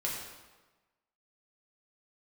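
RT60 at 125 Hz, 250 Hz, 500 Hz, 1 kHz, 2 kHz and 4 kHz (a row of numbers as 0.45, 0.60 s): 1.2, 1.2, 1.2, 1.2, 1.1, 0.95 s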